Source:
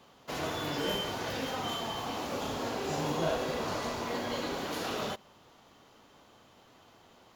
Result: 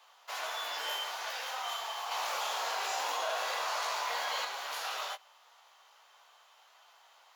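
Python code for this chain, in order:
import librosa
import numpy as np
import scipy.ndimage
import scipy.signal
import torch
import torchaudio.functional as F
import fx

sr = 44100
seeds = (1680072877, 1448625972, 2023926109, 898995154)

y = scipy.signal.sosfilt(scipy.signal.butter(4, 750.0, 'highpass', fs=sr, output='sos'), x)
y = fx.doubler(y, sr, ms=17.0, db=-8.5)
y = fx.env_flatten(y, sr, amount_pct=70, at=(2.11, 4.45))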